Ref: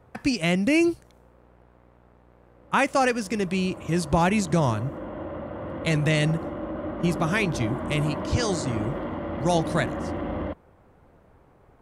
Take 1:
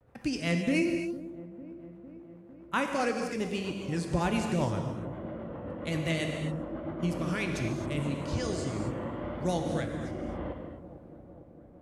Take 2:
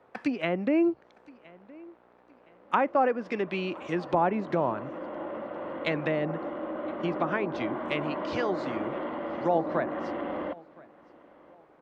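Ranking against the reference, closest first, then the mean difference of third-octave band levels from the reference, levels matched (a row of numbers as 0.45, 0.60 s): 1, 2; 5.0, 6.5 dB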